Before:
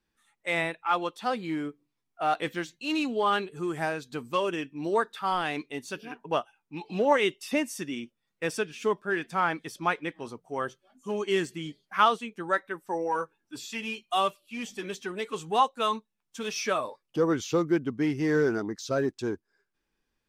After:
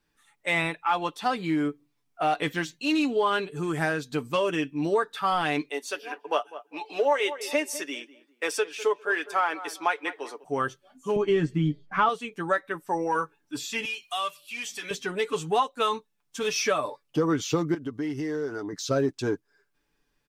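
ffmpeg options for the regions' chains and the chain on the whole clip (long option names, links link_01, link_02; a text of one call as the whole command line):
ffmpeg -i in.wav -filter_complex "[0:a]asettb=1/sr,asplit=3[link_01][link_02][link_03];[link_01]atrim=end=5.694[link_04];[link_02]atrim=start=5.69:end=10.44,asetpts=PTS-STARTPTS,afade=type=in:duration=0.004:curve=qsin,afade=type=out:start_time=4.746:duration=0.004:curve=qsin,highpass=frequency=380:width=0.5412,highpass=frequency=380:width=1.3066,asplit=2[link_05][link_06];[link_06]adelay=200,lowpass=frequency=1600:poles=1,volume=-17dB,asplit=2[link_07][link_08];[link_08]adelay=200,lowpass=frequency=1600:poles=1,volume=0.31,asplit=2[link_09][link_10];[link_10]adelay=200,lowpass=frequency=1600:poles=1,volume=0.31[link_11];[link_05][link_07][link_09][link_11]amix=inputs=4:normalize=0,atrim=end_sample=209475[link_12];[link_03]atrim=start=10.436[link_13];[link_04][link_12]acrossfade=duration=0.004:curve1=hsin:curve2=qsin[link_14];[link_14][link_13]acrossfade=duration=0.004:curve1=qsin:curve2=hsin,asettb=1/sr,asplit=3[link_15][link_16][link_17];[link_15]atrim=end=11.164[link_18];[link_16]atrim=start=11.16:end=12.09,asetpts=PTS-STARTPTS,afade=type=in:duration=0.004:curve=qsin,afade=type=out:start_time=0.926:duration=0.004:curve=qsin,aemphasis=mode=reproduction:type=riaa,asplit=2[link_19][link_20];[link_20]adelay=13,volume=-11dB[link_21];[link_19][link_21]amix=inputs=2:normalize=0,atrim=end_sample=41013[link_22];[link_17]atrim=start=12.086[link_23];[link_18][link_22]acrossfade=duration=0.004:curve1=hsin:curve2=qsin[link_24];[link_24][link_23]acrossfade=duration=0.004:curve1=qsin:curve2=hsin,asettb=1/sr,asplit=3[link_25][link_26][link_27];[link_25]atrim=end=13.854[link_28];[link_26]atrim=start=13.85:end=14.91,asetpts=PTS-STARTPTS,afade=type=in:duration=0.004:curve=qsin,afade=type=out:start_time=1.056:duration=0.004:curve=qsin,tiltshelf=frequency=670:gain=-9.5,bandreject=frequency=50:width_type=h:width=6,bandreject=frequency=100:width_type=h:width=6,bandreject=frequency=150:width_type=h:width=6,acompressor=threshold=-44dB:ratio=2:attack=3.2:release=140:knee=1:detection=peak[link_29];[link_27]atrim=start=14.906[link_30];[link_28][link_29]acrossfade=duration=0.004:curve1=hsin:curve2=qsin[link_31];[link_31][link_30]acrossfade=duration=0.004:curve1=qsin:curve2=hsin,asettb=1/sr,asplit=3[link_32][link_33][link_34];[link_32]atrim=end=17.744[link_35];[link_33]atrim=start=17.74:end=18.73,asetpts=PTS-STARTPTS,afade=type=in:duration=0.004:curve=qsin,afade=type=out:start_time=0.986:duration=0.004:curve=qsin,equalizer=frequency=160:width_type=o:width=1.1:gain=-6.5,bandreject=frequency=2400:width=5.7,acompressor=threshold=-36dB:ratio=4:attack=3.2:release=140:knee=1:detection=peak[link_36];[link_34]atrim=start=18.726[link_37];[link_35][link_36]acrossfade=duration=0.004:curve1=hsin:curve2=qsin[link_38];[link_38][link_37]acrossfade=duration=0.004:curve1=qsin:curve2=hsin,aecho=1:1:6.9:0.5,acompressor=threshold=-26dB:ratio=3,volume=4.5dB" out.wav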